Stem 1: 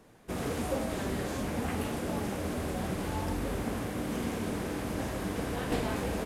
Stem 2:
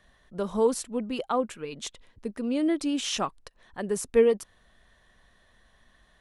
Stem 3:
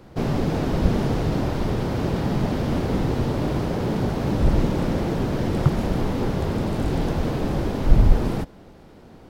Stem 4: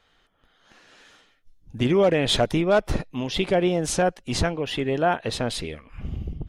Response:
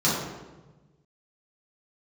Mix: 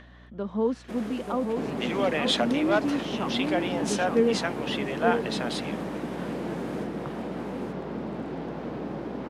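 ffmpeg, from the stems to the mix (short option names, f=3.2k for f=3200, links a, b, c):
-filter_complex "[0:a]alimiter=level_in=3.5dB:limit=-24dB:level=0:latency=1:release=408,volume=-3.5dB,adelay=600,volume=-1dB,asplit=2[a][b];[b]volume=-3.5dB[c];[1:a]lowpass=4k,equalizer=f=230:t=o:w=0.77:g=7.5,acompressor=mode=upward:threshold=-35dB:ratio=2.5,volume=-4.5dB,asplit=2[d][e];[e]volume=-4.5dB[f];[2:a]acrossover=split=250|2800[g][h][i];[g]acompressor=threshold=-27dB:ratio=4[j];[h]acompressor=threshold=-31dB:ratio=4[k];[i]acompressor=threshold=-59dB:ratio=4[l];[j][k][l]amix=inputs=3:normalize=0,adelay=1400,volume=-3dB[m];[3:a]highpass=760,volume=-0.5dB[n];[c][f]amix=inputs=2:normalize=0,aecho=0:1:884:1[o];[a][d][m][n][o]amix=inputs=5:normalize=0,highpass=f=170:w=0.5412,highpass=f=170:w=1.3066,highshelf=f=7.2k:g=-11.5,aeval=exprs='val(0)+0.00316*(sin(2*PI*60*n/s)+sin(2*PI*2*60*n/s)/2+sin(2*PI*3*60*n/s)/3+sin(2*PI*4*60*n/s)/4+sin(2*PI*5*60*n/s)/5)':c=same"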